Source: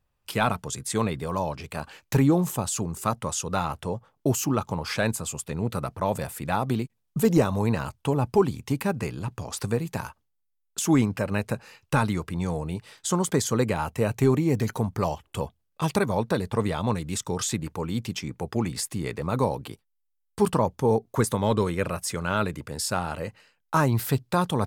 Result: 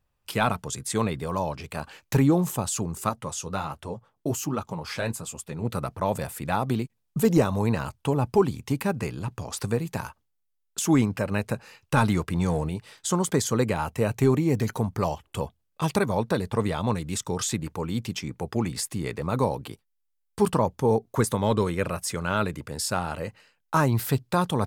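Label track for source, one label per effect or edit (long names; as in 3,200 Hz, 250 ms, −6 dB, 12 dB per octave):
3.090000	5.650000	flanger 1.3 Hz, delay 2.6 ms, depth 9.6 ms, regen −37%
11.970000	12.690000	leveller curve on the samples passes 1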